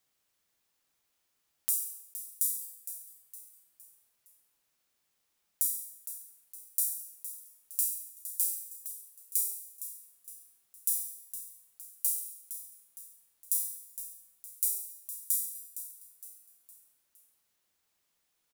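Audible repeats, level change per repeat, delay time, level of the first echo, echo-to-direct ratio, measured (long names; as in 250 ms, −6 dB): 4, −7.0 dB, 462 ms, −12.0 dB, −11.0 dB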